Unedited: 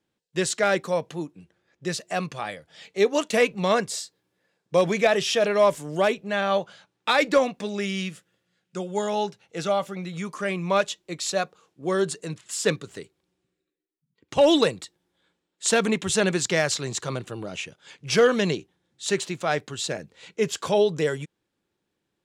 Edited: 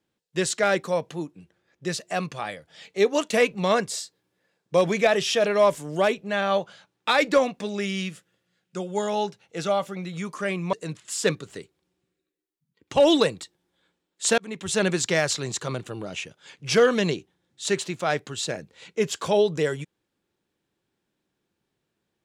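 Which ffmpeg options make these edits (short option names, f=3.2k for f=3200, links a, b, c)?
-filter_complex "[0:a]asplit=3[a][b][c];[a]atrim=end=10.732[d];[b]atrim=start=12.138:end=15.79,asetpts=PTS-STARTPTS,afade=t=out:st=3.648:d=0.004:c=hsin[e];[c]atrim=start=15.79,asetpts=PTS-STARTPTS,afade=t=in:d=0.47[f];[e][f]concat=n=2:v=0:a=1[g];[d][g]acrossfade=d=0.004:c1=hsin:c2=hsin"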